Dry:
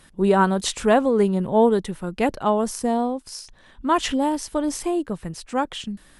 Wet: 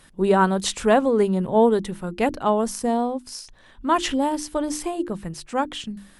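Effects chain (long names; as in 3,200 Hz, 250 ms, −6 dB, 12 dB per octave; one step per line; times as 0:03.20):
mains-hum notches 50/100/150/200/250/300/350 Hz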